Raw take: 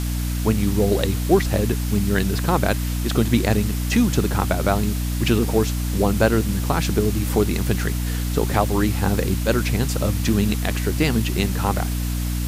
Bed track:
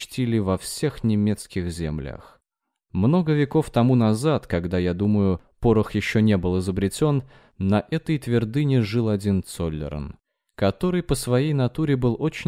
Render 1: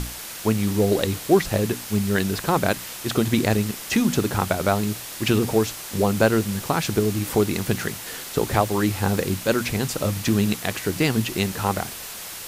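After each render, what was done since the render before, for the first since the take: notches 60/120/180/240/300 Hz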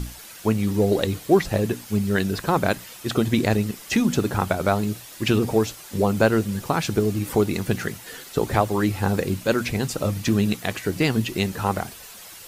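denoiser 9 dB, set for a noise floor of -36 dBFS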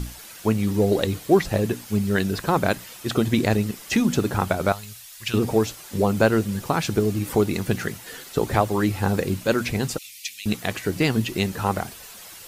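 4.72–5.34 passive tone stack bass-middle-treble 10-0-10; 9.98–10.46 elliptic high-pass 2200 Hz, stop band 50 dB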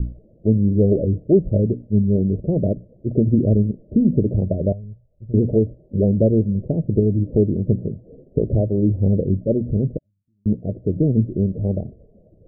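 Chebyshev low-pass 620 Hz, order 6; low shelf 250 Hz +9 dB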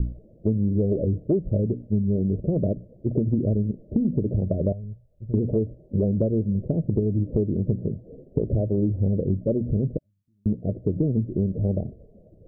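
compressor, threshold -19 dBFS, peak gain reduction 10 dB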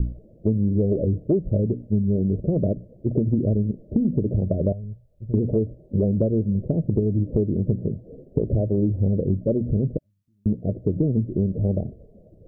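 gain +1.5 dB

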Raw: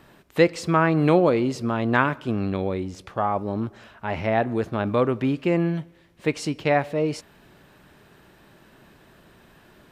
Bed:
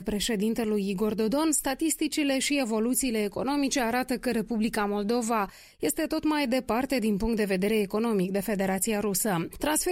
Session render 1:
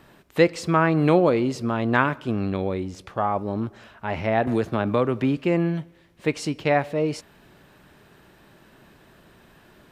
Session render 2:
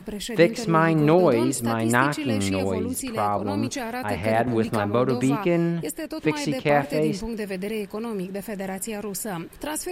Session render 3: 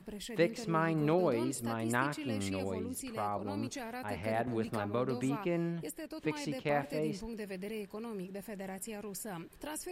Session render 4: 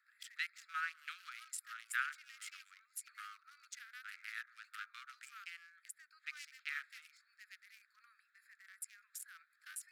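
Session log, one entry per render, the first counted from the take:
4.47–5.37 three-band squash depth 70%
add bed -3.5 dB
gain -12 dB
Wiener smoothing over 15 samples; steep high-pass 1300 Hz 96 dB/oct

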